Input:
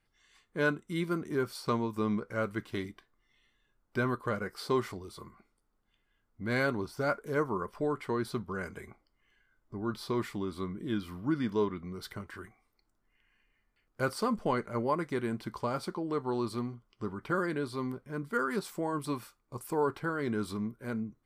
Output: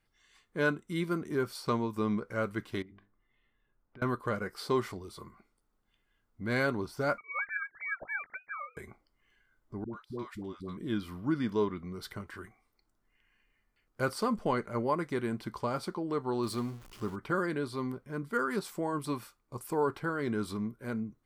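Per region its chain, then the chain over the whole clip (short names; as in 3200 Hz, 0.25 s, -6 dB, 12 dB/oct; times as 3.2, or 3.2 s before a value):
2.82–4.02 notches 50/100/150/200/250/300/350/400 Hz + compressor 5:1, threshold -50 dBFS + air absorption 460 m
7.18–8.77 sine-wave speech + HPF 690 Hz + inverted band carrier 2700 Hz
9.84–10.77 gate -40 dBFS, range -24 dB + compressor 2.5:1, threshold -38 dBFS + dispersion highs, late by 93 ms, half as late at 520 Hz
16.43–17.16 zero-crossing step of -48 dBFS + bell 12000 Hz +5 dB 2.8 oct
whole clip: dry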